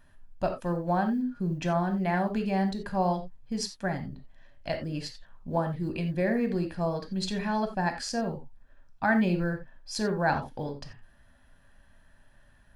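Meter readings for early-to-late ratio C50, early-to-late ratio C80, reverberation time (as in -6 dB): 9.5 dB, 15.5 dB, not exponential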